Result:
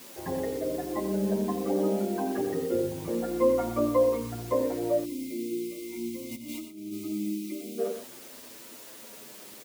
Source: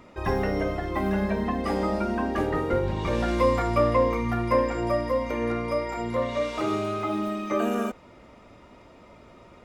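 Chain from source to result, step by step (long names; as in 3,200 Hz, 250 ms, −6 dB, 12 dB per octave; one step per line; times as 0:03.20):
spectral envelope exaggerated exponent 2
parametric band 1,200 Hz −7.5 dB 0.37 octaves
in parallel at −7 dB: bit-depth reduction 6 bits, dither triangular
0:06.31–0:06.93: on the sum: compressor whose output falls as the input rises −29 dBFS, ratio −0.5
high-pass filter 210 Hz 12 dB per octave
on a send: loudspeakers that aren't time-aligned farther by 30 metres −10 dB, 42 metres −11 dB
0:05.05–0:07.78: on the sum: gain on a spectral selection 370–2,000 Hz −23 dB
barber-pole flanger 8.6 ms −0.37 Hz
level −2 dB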